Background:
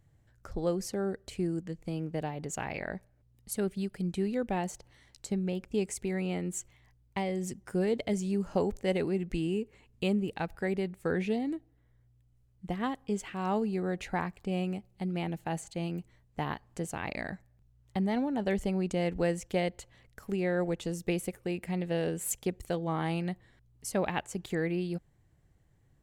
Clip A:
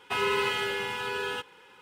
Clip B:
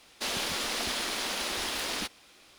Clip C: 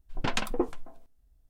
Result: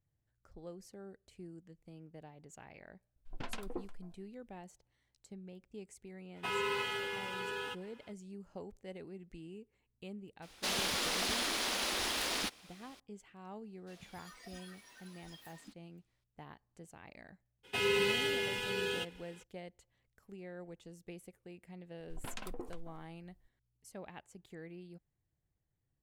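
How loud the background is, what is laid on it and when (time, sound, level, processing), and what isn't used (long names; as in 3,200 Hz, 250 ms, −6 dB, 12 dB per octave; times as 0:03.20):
background −18 dB
0:03.16: mix in C −11.5 dB + harmonic and percussive parts rebalanced percussive −3 dB
0:06.33: mix in A −8 dB, fades 0.05 s
0:10.42: mix in B −2.5 dB
0:13.66: mix in B −11.5 dB + noise reduction from a noise print of the clip's start 19 dB
0:17.63: mix in A −0.5 dB, fades 0.02 s + parametric band 1,100 Hz −14 dB 1 octave
0:22.00: mix in C −6.5 dB + downward compressor 10 to 1, threshold −31 dBFS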